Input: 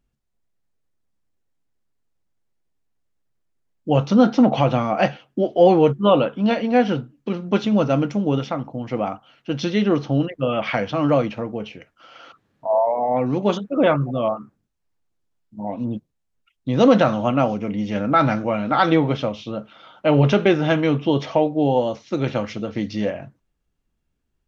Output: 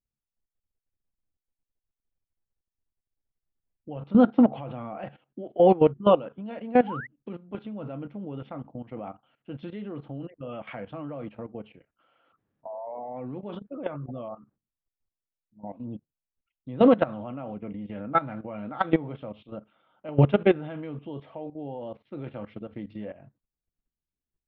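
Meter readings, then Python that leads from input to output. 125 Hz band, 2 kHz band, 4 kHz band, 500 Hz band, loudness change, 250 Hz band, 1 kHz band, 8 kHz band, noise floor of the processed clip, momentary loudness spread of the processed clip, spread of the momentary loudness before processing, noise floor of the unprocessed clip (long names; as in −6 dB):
−9.0 dB, −11.5 dB, −15.5 dB, −7.5 dB, −6.5 dB, −7.5 dB, −9.0 dB, can't be measured, below −85 dBFS, 21 LU, 13 LU, −74 dBFS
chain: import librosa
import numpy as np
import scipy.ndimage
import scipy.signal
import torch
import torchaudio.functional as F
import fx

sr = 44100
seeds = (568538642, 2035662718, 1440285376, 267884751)

y = scipy.signal.sosfilt(scipy.signal.butter(6, 3600.0, 'lowpass', fs=sr, output='sos'), x)
y = fx.level_steps(y, sr, step_db=14)
y = fx.spec_paint(y, sr, seeds[0], shape='rise', start_s=6.87, length_s=0.2, low_hz=780.0, high_hz=2100.0, level_db=-27.0)
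y = fx.high_shelf(y, sr, hz=2000.0, db=-8.5)
y = fx.upward_expand(y, sr, threshold_db=-31.0, expansion=1.5)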